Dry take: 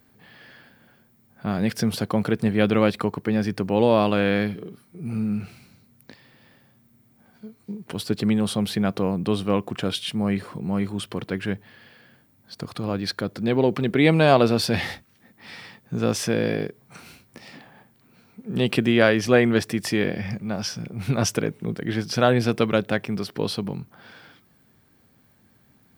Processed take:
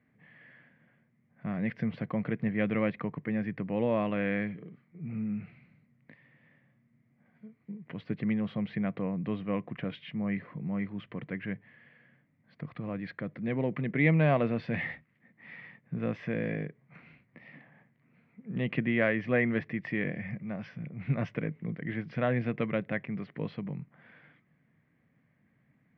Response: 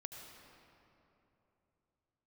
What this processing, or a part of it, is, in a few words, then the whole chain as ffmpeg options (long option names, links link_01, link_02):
bass cabinet: -af "highpass=71,equalizer=frequency=91:width_type=q:width=4:gain=-6,equalizer=frequency=150:width_type=q:width=4:gain=7,equalizer=frequency=390:width_type=q:width=4:gain=-7,equalizer=frequency=840:width_type=q:width=4:gain=-7,equalizer=frequency=1400:width_type=q:width=4:gain=-6,equalizer=frequency=2000:width_type=q:width=4:gain=9,lowpass=frequency=2400:width=0.5412,lowpass=frequency=2400:width=1.3066,volume=-8.5dB"